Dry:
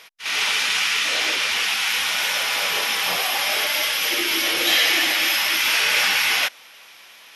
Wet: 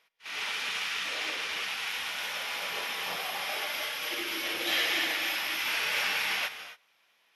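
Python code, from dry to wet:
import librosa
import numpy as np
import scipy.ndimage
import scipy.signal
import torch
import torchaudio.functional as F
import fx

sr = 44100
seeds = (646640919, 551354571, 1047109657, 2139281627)

y = fx.peak_eq(x, sr, hz=7900.0, db=-6.5, octaves=2.1)
y = fx.rev_gated(y, sr, seeds[0], gate_ms=300, shape='rising', drr_db=6.0)
y = fx.upward_expand(y, sr, threshold_db=-44.0, expansion=1.5)
y = y * 10.0 ** (-8.0 / 20.0)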